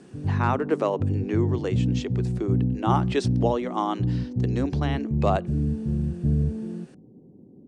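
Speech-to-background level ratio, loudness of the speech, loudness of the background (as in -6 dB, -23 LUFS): -1.5 dB, -28.5 LUFS, -27.0 LUFS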